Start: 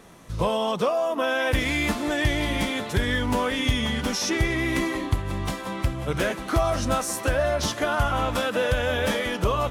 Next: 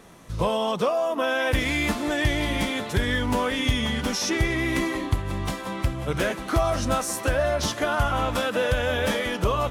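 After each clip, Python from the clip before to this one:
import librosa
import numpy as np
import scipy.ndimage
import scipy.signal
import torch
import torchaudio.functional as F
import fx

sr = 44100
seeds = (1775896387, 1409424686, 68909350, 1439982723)

y = x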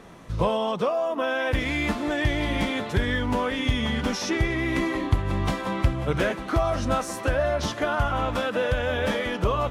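y = fx.high_shelf(x, sr, hz=5800.0, db=-12.0)
y = fx.rider(y, sr, range_db=4, speed_s=0.5)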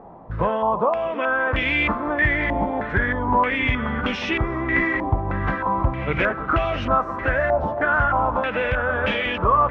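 y = fx.echo_feedback(x, sr, ms=325, feedback_pct=57, wet_db=-14)
y = fx.filter_held_lowpass(y, sr, hz=3.2, low_hz=820.0, high_hz=2700.0)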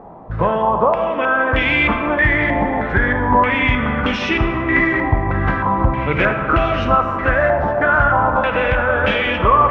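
y = fx.rev_freeverb(x, sr, rt60_s=2.6, hf_ratio=0.45, predelay_ms=0, drr_db=6.5)
y = y * librosa.db_to_amplitude(4.5)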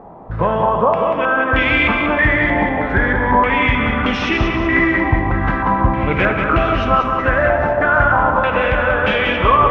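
y = fx.echo_feedback(x, sr, ms=188, feedback_pct=40, wet_db=-6.0)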